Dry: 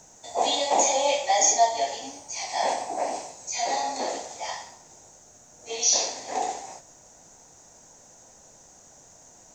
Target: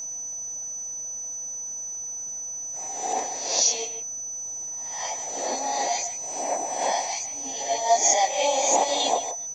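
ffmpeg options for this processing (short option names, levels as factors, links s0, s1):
-filter_complex "[0:a]areverse,asplit=2[s0][s1];[s1]adelay=150,highpass=300,lowpass=3400,asoftclip=type=hard:threshold=0.126,volume=0.316[s2];[s0][s2]amix=inputs=2:normalize=0,aeval=exprs='val(0)+0.0282*sin(2*PI*6000*n/s)':c=same"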